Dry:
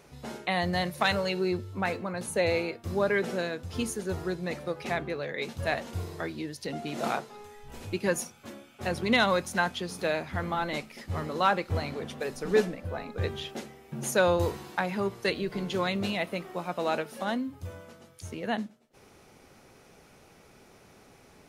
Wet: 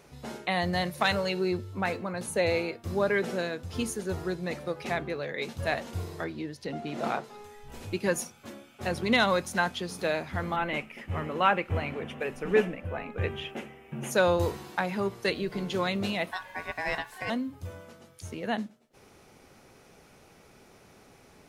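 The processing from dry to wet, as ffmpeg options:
ffmpeg -i in.wav -filter_complex "[0:a]asettb=1/sr,asplit=3[link_01][link_02][link_03];[link_01]atrim=end=6.244[link_04];[link_02]atrim=start=6.24:end=7.24,asetpts=PTS-STARTPTS,afade=type=in:duration=0.004:curve=qsin,afade=type=out:start_time=0.996:duration=0.004:curve=qsin,highshelf=frequency=5100:gain=-11[link_05];[link_03]atrim=start=7.236[link_06];[link_04][link_05]acrossfade=duration=0.004:curve1=hsin:curve2=qsin[link_07];[link_07][link_06]acrossfade=duration=0.004:curve1=qsin:curve2=hsin,asettb=1/sr,asplit=3[link_08][link_09][link_10];[link_08]atrim=end=10.564[link_11];[link_09]atrim=start=10.56:end=14.11,asetpts=PTS-STARTPTS,afade=type=in:duration=0.004:curve=qsin,afade=type=out:start_time=3.546:duration=0.004:curve=qsin,highshelf=frequency=3400:width_type=q:width=3:gain=-7[link_12];[link_10]atrim=start=14.106[link_13];[link_11][link_12]acrossfade=duration=0.004:curve1=hsin:curve2=qsin[link_14];[link_14][link_13]acrossfade=duration=0.004:curve1=qsin:curve2=hsin,asettb=1/sr,asplit=3[link_15][link_16][link_17];[link_15]atrim=end=16.314[link_18];[link_16]atrim=start=16.31:end=17.3,asetpts=PTS-STARTPTS,afade=type=in:duration=0.004:curve=qsin,afade=type=out:start_time=0.986:duration=0.004:curve=qsin,aeval=exprs='val(0)*sin(2*PI*1300*n/s)':channel_layout=same[link_19];[link_17]atrim=start=17.296[link_20];[link_18][link_19]acrossfade=duration=0.004:curve1=hsin:curve2=qsin[link_21];[link_21][link_20]acrossfade=duration=0.004:curve1=qsin:curve2=hsin" out.wav

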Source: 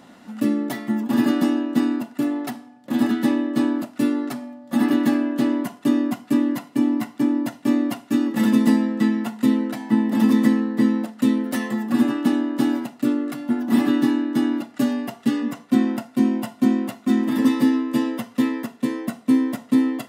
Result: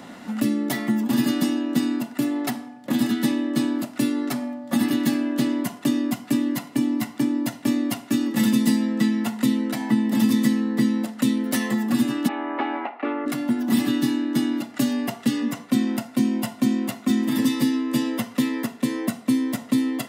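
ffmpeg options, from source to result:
ffmpeg -i in.wav -filter_complex "[0:a]asplit=3[link_01][link_02][link_03];[link_01]afade=type=out:start_time=12.27:duration=0.02[link_04];[link_02]highpass=frequency=380:width=0.5412,highpass=frequency=380:width=1.3066,equalizer=frequency=810:width_type=q:width=4:gain=10,equalizer=frequency=1200:width_type=q:width=4:gain=5,equalizer=frequency=2300:width_type=q:width=4:gain=6,lowpass=frequency=2500:width=0.5412,lowpass=frequency=2500:width=1.3066,afade=type=in:start_time=12.27:duration=0.02,afade=type=out:start_time=13.25:duration=0.02[link_05];[link_03]afade=type=in:start_time=13.25:duration=0.02[link_06];[link_04][link_05][link_06]amix=inputs=3:normalize=0,equalizer=frequency=2100:width_type=o:width=0.28:gain=3,acrossover=split=160|3000[link_07][link_08][link_09];[link_08]acompressor=threshold=-30dB:ratio=6[link_10];[link_07][link_10][link_09]amix=inputs=3:normalize=0,volume=6.5dB" out.wav

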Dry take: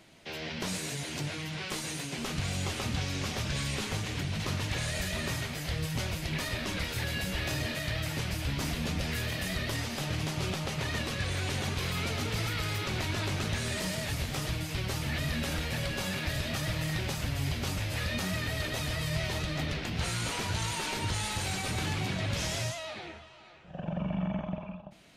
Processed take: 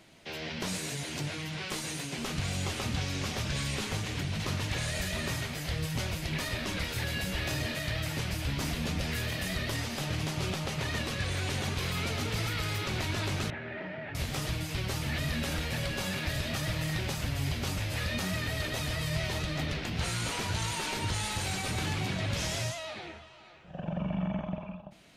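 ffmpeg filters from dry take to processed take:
ffmpeg -i in.wav -filter_complex "[0:a]asettb=1/sr,asplit=3[link_01][link_02][link_03];[link_01]atrim=end=13.504[link_04];[link_02]atrim=start=13.5:end=14.15,asetpts=PTS-STARTPTS,afade=type=in:duration=0.004:curve=qsin,afade=type=out:start_time=0.646:duration=0.004:curve=qsin,highpass=200,equalizer=frequency=210:width_type=q:width=4:gain=-7,equalizer=frequency=480:width_type=q:width=4:gain=-6,equalizer=frequency=1100:width_type=q:width=4:gain=-10,lowpass=frequency=2100:width=0.5412,lowpass=frequency=2100:width=1.3066[link_05];[link_03]atrim=start=14.146[link_06];[link_04][link_05]acrossfade=duration=0.004:curve1=hsin:curve2=qsin[link_07];[link_07][link_06]acrossfade=duration=0.004:curve1=qsin:curve2=hsin" out.wav

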